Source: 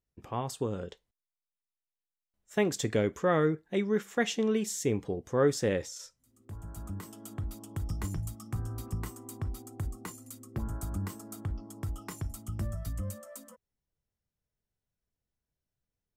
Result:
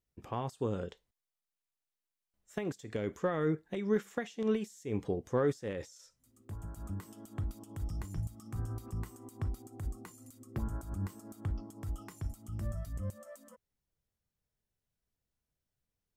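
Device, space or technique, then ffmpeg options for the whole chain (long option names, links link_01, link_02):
de-esser from a sidechain: -filter_complex "[0:a]asplit=2[link_01][link_02];[link_02]highpass=4400,apad=whole_len=713080[link_03];[link_01][link_03]sidechaincompress=threshold=-55dB:ratio=6:attack=3.8:release=92"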